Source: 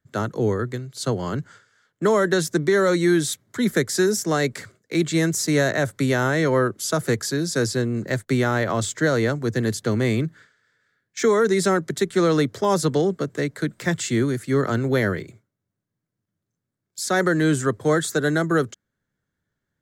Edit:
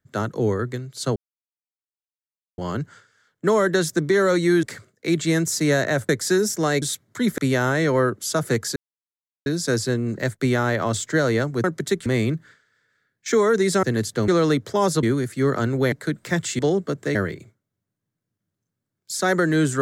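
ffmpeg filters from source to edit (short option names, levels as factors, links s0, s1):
-filter_complex "[0:a]asplit=15[s0][s1][s2][s3][s4][s5][s6][s7][s8][s9][s10][s11][s12][s13][s14];[s0]atrim=end=1.16,asetpts=PTS-STARTPTS,afade=t=out:st=1.156:d=0.004:c=hsin,apad=pad_dur=1.42[s15];[s1]atrim=start=1.16:end=3.212,asetpts=PTS-STARTPTS,afade=t=in:d=0.004:c=hsin[s16];[s2]atrim=start=4.498:end=5.962[s17];[s3]atrim=start=3.768:end=4.502[s18];[s4]atrim=start=3.208:end=3.772[s19];[s5]atrim=start=5.958:end=7.34,asetpts=PTS-STARTPTS,afade=t=out:st=1.378:d=0.004:c=hsin,apad=pad_dur=0.7[s20];[s6]atrim=start=7.34:end=9.522,asetpts=PTS-STARTPTS,afade=t=in:d=0.004:c=hsin[s21];[s7]atrim=start=11.738:end=12.162[s22];[s8]atrim=start=9.968:end=11.742[s23];[s9]atrim=start=9.518:end=9.972[s24];[s10]atrim=start=12.158:end=12.912[s25];[s11]atrim=start=14.138:end=15.032[s26];[s12]atrim=start=13.468:end=14.142[s27];[s13]atrim=start=12.908:end=13.472[s28];[s14]atrim=start=15.028[s29];[s15][s16]concat=n=2:v=0:a=1[s30];[s30][s17]acrossfade=d=0.004:c1=hsin:c2=hsin[s31];[s31][s18]acrossfade=d=0.004:c1=hsin:c2=hsin[s32];[s32][s19]acrossfade=d=0.004:c1=hsin:c2=hsin[s33];[s20][s21]concat=n=2:v=0:a=1[s34];[s33][s34]acrossfade=d=0.004:c1=hsin:c2=hsin[s35];[s35][s22]acrossfade=d=0.004:c1=hsin:c2=hsin[s36];[s36][s23]acrossfade=d=0.004:c1=hsin:c2=hsin[s37];[s37][s24]acrossfade=d=0.004:c1=hsin:c2=hsin[s38];[s38][s25]acrossfade=d=0.004:c1=hsin:c2=hsin[s39];[s39][s26]acrossfade=d=0.004:c1=hsin:c2=hsin[s40];[s40][s27]acrossfade=d=0.004:c1=hsin:c2=hsin[s41];[s41][s28]acrossfade=d=0.004:c1=hsin:c2=hsin[s42];[s42][s29]acrossfade=d=0.004:c1=hsin:c2=hsin"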